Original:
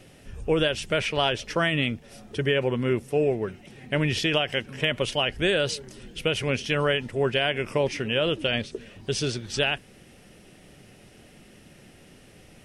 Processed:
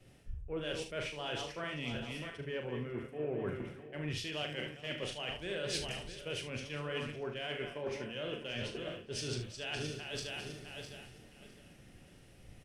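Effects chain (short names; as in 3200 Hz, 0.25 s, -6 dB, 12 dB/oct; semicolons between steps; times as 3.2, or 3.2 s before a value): regenerating reverse delay 0.329 s, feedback 57%, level -9.5 dB; reverse; compressor 12:1, threshold -37 dBFS, peak gain reduction 19.5 dB; reverse; early reflections 40 ms -7 dB, 75 ms -9 dB; in parallel at -9 dB: soft clip -37.5 dBFS, distortion -12 dB; on the sum: crackle 230/s -59 dBFS; three-band expander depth 100%; gain -2 dB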